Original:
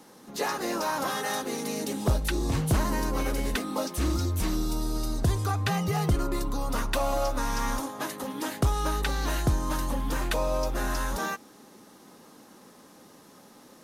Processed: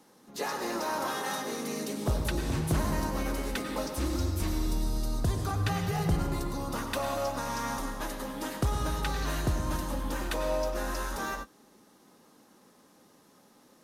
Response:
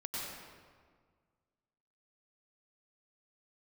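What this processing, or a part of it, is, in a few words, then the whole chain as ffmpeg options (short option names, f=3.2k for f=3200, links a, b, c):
keyed gated reverb: -filter_complex "[0:a]asplit=3[a][b][c];[1:a]atrim=start_sample=2205[d];[b][d]afir=irnorm=-1:irlink=0[e];[c]apad=whole_len=610047[f];[e][f]sidechaingate=range=-33dB:threshold=-40dB:ratio=16:detection=peak,volume=-2dB[g];[a][g]amix=inputs=2:normalize=0,volume=-7.5dB"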